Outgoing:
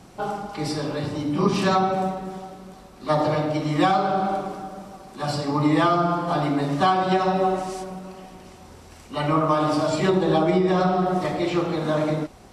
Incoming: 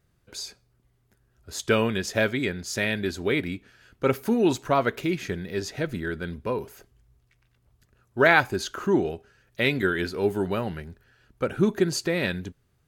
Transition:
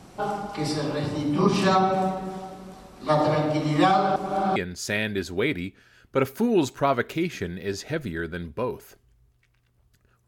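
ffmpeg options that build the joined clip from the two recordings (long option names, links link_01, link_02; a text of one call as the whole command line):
ffmpeg -i cue0.wav -i cue1.wav -filter_complex "[0:a]apad=whole_dur=10.27,atrim=end=10.27,asplit=2[link_01][link_02];[link_01]atrim=end=4.162[link_03];[link_02]atrim=start=4.158:end=4.562,asetpts=PTS-STARTPTS,areverse[link_04];[1:a]atrim=start=2.438:end=8.15[link_05];[link_03][link_04]acrossfade=duration=0.004:curve1=hsin:curve2=hsin[link_06];[link_06][link_05]acrossfade=duration=0.004:curve1=hsin:curve2=hsin" out.wav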